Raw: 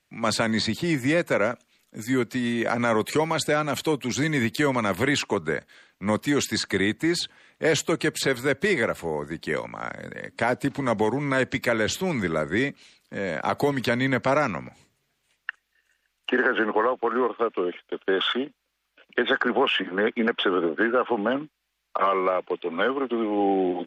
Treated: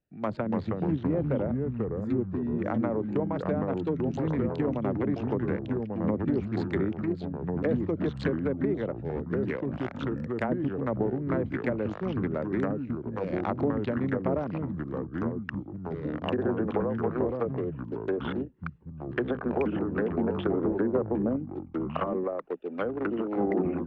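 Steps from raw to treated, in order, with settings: local Wiener filter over 41 samples; 20.71–22.24 s: tone controls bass +9 dB, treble -5 dB; low-pass that closes with the level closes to 600 Hz, closed at -20 dBFS; ever faster or slower copies 243 ms, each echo -3 st, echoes 3; trim -4 dB

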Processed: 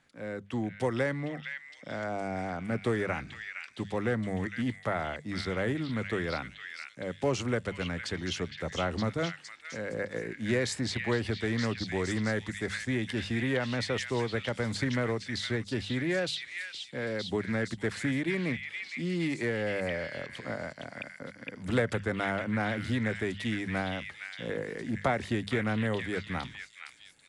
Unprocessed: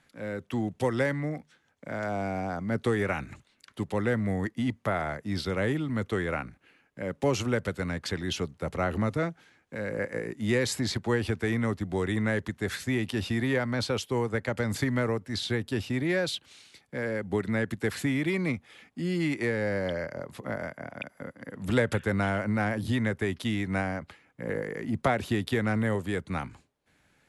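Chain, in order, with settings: hum notches 50/100/150/200 Hz; repeats whose band climbs or falls 462 ms, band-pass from 2.5 kHz, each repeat 0.7 oct, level -0.5 dB; resampled via 22.05 kHz; loudspeaker Doppler distortion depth 0.16 ms; trim -2.5 dB

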